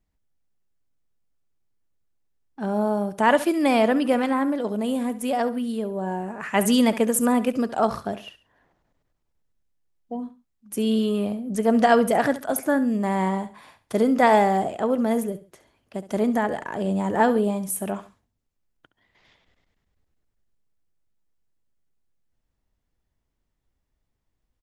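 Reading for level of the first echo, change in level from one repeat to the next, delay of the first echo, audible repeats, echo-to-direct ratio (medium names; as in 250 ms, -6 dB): -15.0 dB, -9.5 dB, 68 ms, 2, -14.5 dB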